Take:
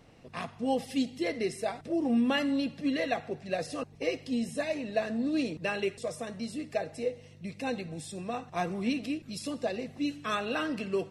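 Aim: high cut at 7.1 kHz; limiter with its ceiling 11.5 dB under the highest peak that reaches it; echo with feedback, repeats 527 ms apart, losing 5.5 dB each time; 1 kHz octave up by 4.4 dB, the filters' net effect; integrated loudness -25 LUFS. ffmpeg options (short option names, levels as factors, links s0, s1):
-af "lowpass=7100,equalizer=f=1000:t=o:g=6.5,alimiter=level_in=1.12:limit=0.0631:level=0:latency=1,volume=0.891,aecho=1:1:527|1054|1581|2108|2635|3162|3689:0.531|0.281|0.149|0.079|0.0419|0.0222|0.0118,volume=2.82"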